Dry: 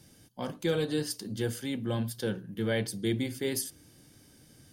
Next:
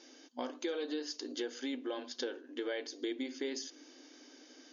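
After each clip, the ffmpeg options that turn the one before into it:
ffmpeg -i in.wav -af "afftfilt=real='re*between(b*sr/4096,240,7000)':imag='im*between(b*sr/4096,240,7000)':win_size=4096:overlap=0.75,acompressor=threshold=-41dB:ratio=4,volume=4.5dB" out.wav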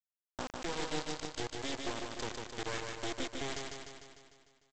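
ffmpeg -i in.wav -af "aeval=exprs='if(lt(val(0),0),0.251*val(0),val(0))':channel_layout=same,aresample=16000,acrusher=bits=5:mix=0:aa=0.000001,aresample=44100,aecho=1:1:150|300|450|600|750|900|1050|1200|1350:0.631|0.379|0.227|0.136|0.0818|0.0491|0.0294|0.0177|0.0106" out.wav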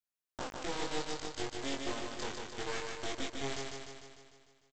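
ffmpeg -i in.wav -filter_complex "[0:a]asplit=2[link_01][link_02];[link_02]adelay=22,volume=-2dB[link_03];[link_01][link_03]amix=inputs=2:normalize=0,volume=-2dB" out.wav

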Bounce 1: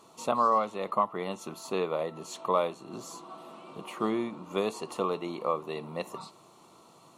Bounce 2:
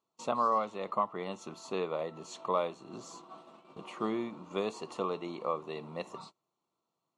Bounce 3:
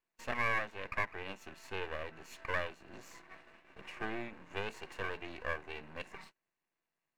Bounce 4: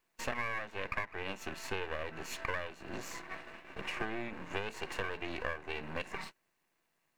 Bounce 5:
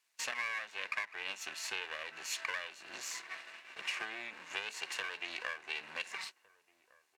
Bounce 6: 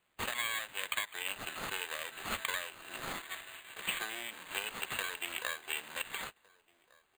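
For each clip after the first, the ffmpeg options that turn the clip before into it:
ffmpeg -i in.wav -af "agate=range=-25dB:threshold=-46dB:ratio=16:detection=peak,lowpass=frequency=7900:width=0.5412,lowpass=frequency=7900:width=1.3066,volume=-4dB" out.wav
ffmpeg -i in.wav -af "aeval=exprs='max(val(0),0)':channel_layout=same,superequalizer=11b=3.16:12b=2.82,volume=-3dB" out.wav
ffmpeg -i in.wav -af "acompressor=threshold=-42dB:ratio=10,volume=10dB" out.wav
ffmpeg -i in.wav -filter_complex "[0:a]bandpass=frequency=5800:width_type=q:width=0.61:csg=0,asplit=2[link_01][link_02];[link_02]adelay=1458,volume=-22dB,highshelf=frequency=4000:gain=-32.8[link_03];[link_01][link_03]amix=inputs=2:normalize=0,volume=7dB" out.wav
ffmpeg -i in.wav -af "acrusher=samples=8:mix=1:aa=0.000001,volume=2dB" out.wav

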